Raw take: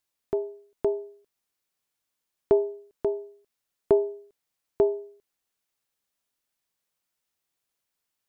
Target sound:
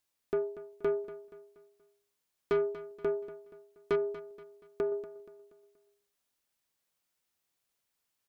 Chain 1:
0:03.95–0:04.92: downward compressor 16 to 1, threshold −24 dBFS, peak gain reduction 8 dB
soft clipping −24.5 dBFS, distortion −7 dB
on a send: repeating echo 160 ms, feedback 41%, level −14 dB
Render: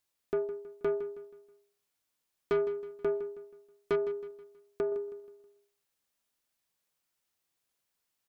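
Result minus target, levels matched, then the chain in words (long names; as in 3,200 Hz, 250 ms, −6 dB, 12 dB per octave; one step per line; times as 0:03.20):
echo 78 ms early
0:03.95–0:04.92: downward compressor 16 to 1, threshold −24 dBFS, peak gain reduction 8 dB
soft clipping −24.5 dBFS, distortion −7 dB
on a send: repeating echo 238 ms, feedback 41%, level −14 dB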